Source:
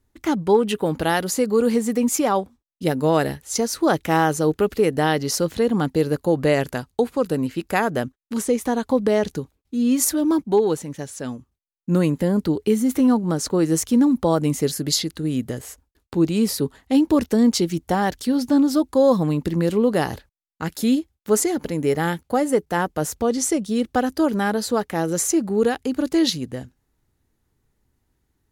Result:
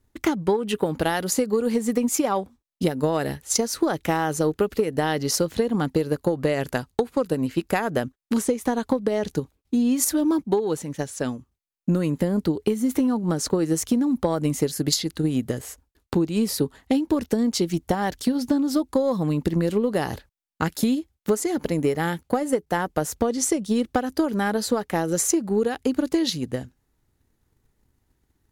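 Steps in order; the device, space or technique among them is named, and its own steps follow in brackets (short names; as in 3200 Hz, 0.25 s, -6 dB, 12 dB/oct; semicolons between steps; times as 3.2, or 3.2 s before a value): drum-bus smash (transient shaper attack +8 dB, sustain 0 dB; compressor 10:1, threshold -17 dBFS, peak gain reduction 11.5 dB; soft clip -8 dBFS, distortion -25 dB)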